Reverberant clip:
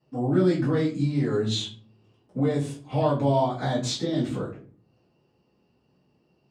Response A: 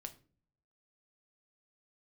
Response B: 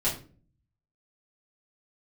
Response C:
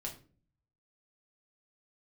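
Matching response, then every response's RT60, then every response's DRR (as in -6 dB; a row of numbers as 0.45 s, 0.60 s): B; 0.45 s, 0.40 s, 0.40 s; 6.5 dB, -9.5 dB, -1.5 dB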